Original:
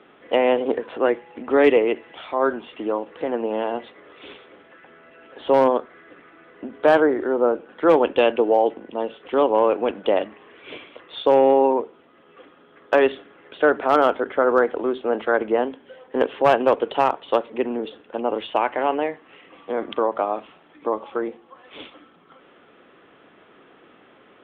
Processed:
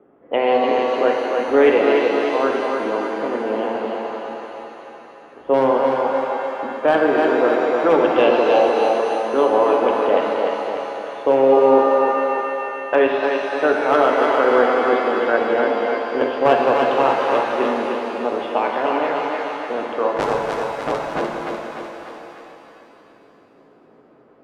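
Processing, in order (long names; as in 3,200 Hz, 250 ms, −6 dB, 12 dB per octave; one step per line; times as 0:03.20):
0:20.16–0:21.20: sub-harmonics by changed cycles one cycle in 3, inverted
low-pass that shuts in the quiet parts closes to 710 Hz, open at −15 dBFS
feedback echo with a high-pass in the loop 299 ms, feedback 55%, high-pass 230 Hz, level −4 dB
reverb with rising layers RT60 2.7 s, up +7 semitones, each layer −8 dB, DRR 1 dB
level −1 dB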